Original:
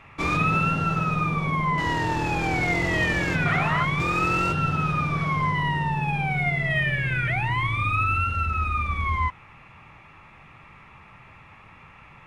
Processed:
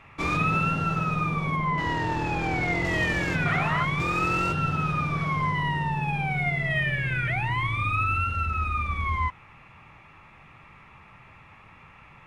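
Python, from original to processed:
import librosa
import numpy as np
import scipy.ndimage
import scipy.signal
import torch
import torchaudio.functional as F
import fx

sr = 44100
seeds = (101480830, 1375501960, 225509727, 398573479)

y = fx.high_shelf(x, sr, hz=6800.0, db=-10.0, at=(1.56, 2.85))
y = y * librosa.db_to_amplitude(-2.0)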